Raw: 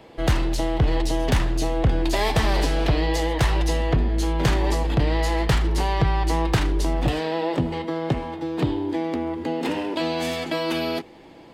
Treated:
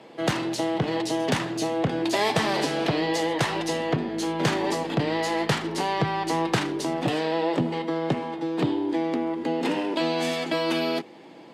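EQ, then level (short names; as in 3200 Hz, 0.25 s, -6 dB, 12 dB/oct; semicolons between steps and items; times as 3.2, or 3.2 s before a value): HPF 150 Hz 24 dB/oct; LPF 11000 Hz 12 dB/oct; 0.0 dB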